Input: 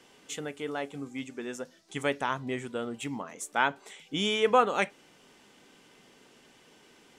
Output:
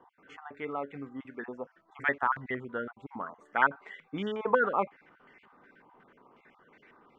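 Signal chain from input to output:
time-frequency cells dropped at random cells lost 28%
low-pass on a step sequencer 5.5 Hz 980–2,000 Hz
level −3 dB

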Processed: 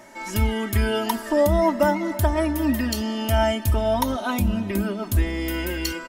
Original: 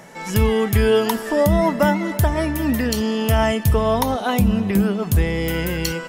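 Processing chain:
comb filter 3.2 ms, depth 95%
level −6 dB

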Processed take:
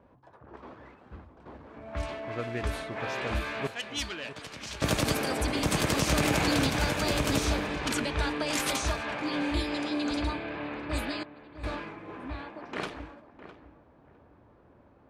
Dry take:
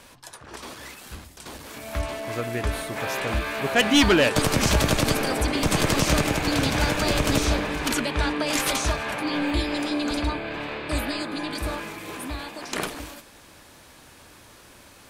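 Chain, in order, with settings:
0:03.67–0:04.82: first-order pre-emphasis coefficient 0.9
low-pass that shuts in the quiet parts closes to 710 Hz, open at −20 dBFS
0:11.23–0:11.72: noise gate with hold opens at −20 dBFS
high-pass filter 43 Hz
feedback echo with a low-pass in the loop 657 ms, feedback 21%, low-pass 1,500 Hz, level −12.5 dB
0:06.17–0:06.67: envelope flattener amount 70%
level −5 dB

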